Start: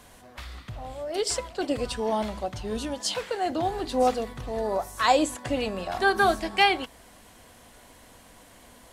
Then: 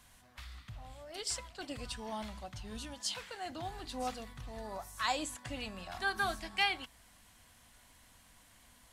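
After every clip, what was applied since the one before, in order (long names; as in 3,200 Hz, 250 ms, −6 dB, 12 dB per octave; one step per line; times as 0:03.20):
parametric band 440 Hz −12.5 dB 1.7 octaves
level −7.5 dB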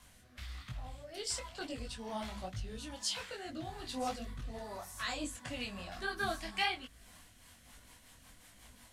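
in parallel at −1 dB: downward compressor, threshold −45 dBFS, peak gain reduction 18 dB
on the sum: rotating-speaker cabinet horn 1.2 Hz, later 5.5 Hz, at 0:06.89
micro pitch shift up and down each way 40 cents
level +3.5 dB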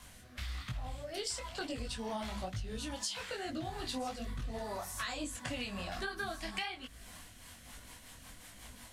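downward compressor 12 to 1, threshold −41 dBFS, peak gain reduction 14 dB
level +6 dB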